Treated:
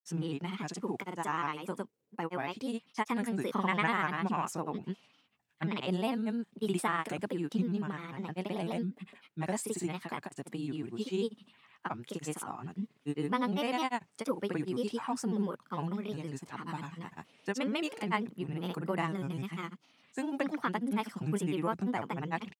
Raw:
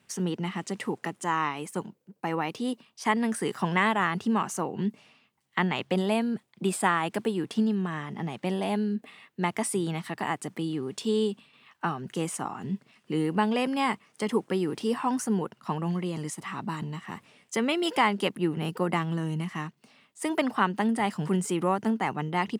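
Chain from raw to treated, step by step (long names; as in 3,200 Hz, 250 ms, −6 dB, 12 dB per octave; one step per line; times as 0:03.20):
granular cloud, pitch spread up and down by 3 semitones
level −5 dB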